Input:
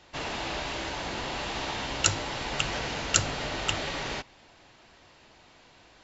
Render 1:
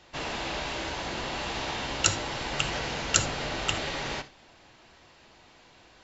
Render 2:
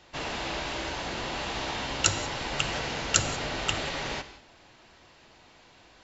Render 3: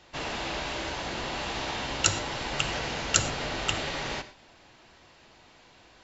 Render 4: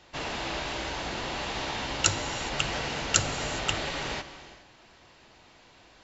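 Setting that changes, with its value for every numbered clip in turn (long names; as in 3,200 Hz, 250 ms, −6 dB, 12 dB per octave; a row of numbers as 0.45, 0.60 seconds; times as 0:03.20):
reverb whose tail is shaped and stops, gate: 100, 210, 140, 440 milliseconds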